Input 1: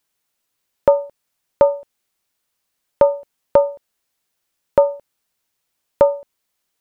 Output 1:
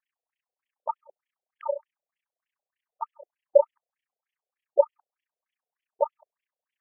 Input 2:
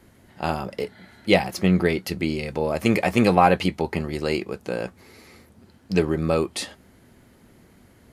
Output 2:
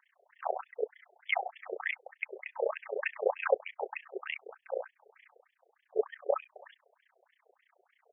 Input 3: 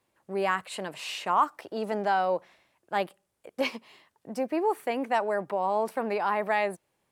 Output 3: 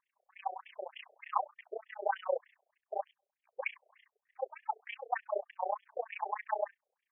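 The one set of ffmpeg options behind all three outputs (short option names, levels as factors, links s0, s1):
-af "bandreject=f=1400:w=11,tremolo=f=30:d=0.974,afftfilt=real='re*between(b*sr/1024,530*pow(2500/530,0.5+0.5*sin(2*PI*3.3*pts/sr))/1.41,530*pow(2500/530,0.5+0.5*sin(2*PI*3.3*pts/sr))*1.41)':imag='im*between(b*sr/1024,530*pow(2500/530,0.5+0.5*sin(2*PI*3.3*pts/sr))/1.41,530*pow(2500/530,0.5+0.5*sin(2*PI*3.3*pts/sr))*1.41)':win_size=1024:overlap=0.75"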